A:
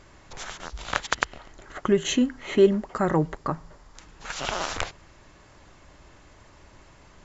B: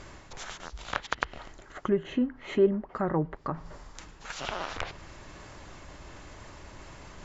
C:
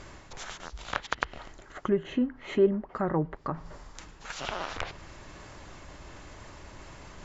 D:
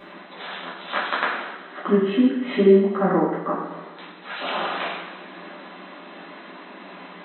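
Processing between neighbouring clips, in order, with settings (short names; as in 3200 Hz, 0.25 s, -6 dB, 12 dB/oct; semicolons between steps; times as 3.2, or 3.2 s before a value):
treble ducked by the level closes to 1600 Hz, closed at -21 dBFS; reverse; upward compressor, threshold -30 dBFS; reverse; gain -5 dB
nothing audible
FFT band-pass 170–4100 Hz; two-slope reverb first 0.93 s, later 2.6 s, DRR -9 dB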